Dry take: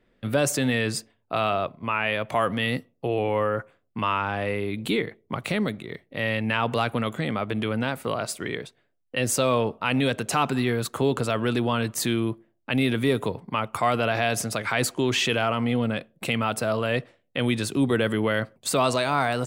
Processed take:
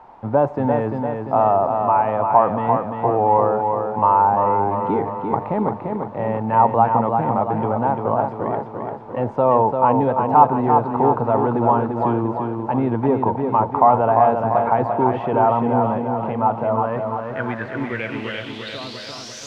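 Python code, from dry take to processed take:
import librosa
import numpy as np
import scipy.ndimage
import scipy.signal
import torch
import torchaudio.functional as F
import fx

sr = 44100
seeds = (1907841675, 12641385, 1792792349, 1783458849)

p1 = fx.fade_out_tail(x, sr, length_s=3.78)
p2 = fx.high_shelf(p1, sr, hz=4100.0, db=-9.5)
p3 = fx.dmg_noise_colour(p2, sr, seeds[0], colour='blue', level_db=-40.0)
p4 = fx.backlash(p3, sr, play_db=-35.0)
p5 = fx.filter_sweep_lowpass(p4, sr, from_hz=880.0, to_hz=6300.0, start_s=16.67, end_s=19.45, q=7.6)
p6 = p5 + fx.echo_feedback(p5, sr, ms=344, feedback_pct=55, wet_db=-5, dry=0)
y = p6 * 10.0 ** (2.0 / 20.0)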